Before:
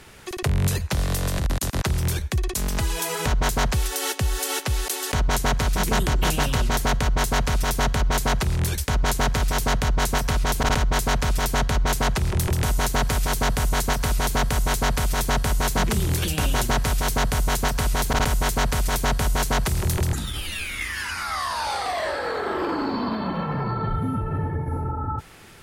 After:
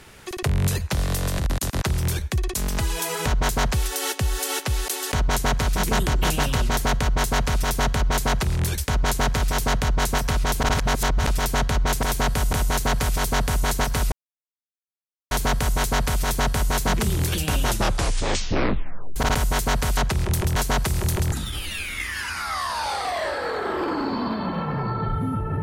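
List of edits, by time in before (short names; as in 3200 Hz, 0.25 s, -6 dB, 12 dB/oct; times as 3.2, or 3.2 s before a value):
10.74–11.28 reverse
12.03–12.62 swap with 18.87–19.37
14.21 insert silence 1.19 s
16.54 tape stop 1.52 s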